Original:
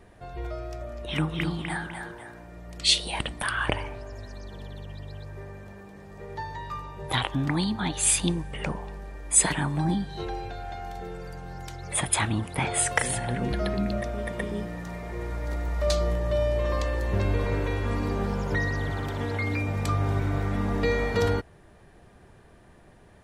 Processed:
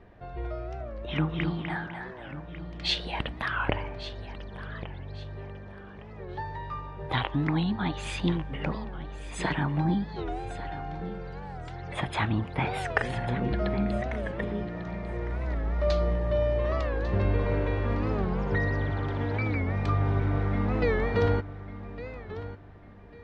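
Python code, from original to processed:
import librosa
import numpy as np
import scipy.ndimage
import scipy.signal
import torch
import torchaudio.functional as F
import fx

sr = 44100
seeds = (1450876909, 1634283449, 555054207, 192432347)

p1 = fx.air_absorb(x, sr, metres=240.0)
p2 = p1 + fx.echo_feedback(p1, sr, ms=1147, feedback_pct=29, wet_db=-14, dry=0)
y = fx.record_warp(p2, sr, rpm=45.0, depth_cents=160.0)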